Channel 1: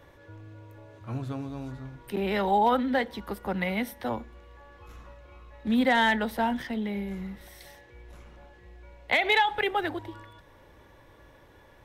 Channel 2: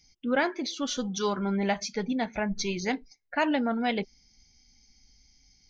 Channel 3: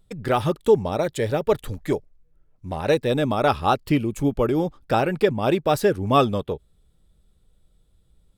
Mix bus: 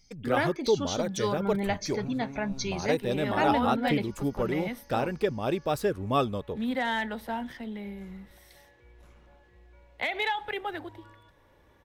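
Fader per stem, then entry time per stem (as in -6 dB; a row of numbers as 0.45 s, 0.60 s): -6.5 dB, -2.0 dB, -8.0 dB; 0.90 s, 0.00 s, 0.00 s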